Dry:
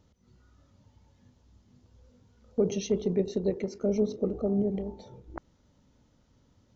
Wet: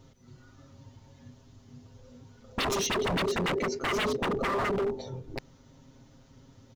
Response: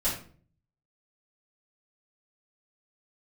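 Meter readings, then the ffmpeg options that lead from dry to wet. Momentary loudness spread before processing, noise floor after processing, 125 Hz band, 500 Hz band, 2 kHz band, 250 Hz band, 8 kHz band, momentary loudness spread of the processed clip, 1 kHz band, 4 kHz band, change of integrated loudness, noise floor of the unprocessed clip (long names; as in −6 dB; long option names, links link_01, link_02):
19 LU, −58 dBFS, −1.0 dB, −1.0 dB, +21.0 dB, −4.5 dB, can't be measured, 12 LU, +17.5 dB, +14.0 dB, 0.0 dB, −66 dBFS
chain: -af "aecho=1:1:7.5:0.88,aeval=exprs='0.0299*(abs(mod(val(0)/0.0299+3,4)-2)-1)':channel_layout=same,volume=7dB"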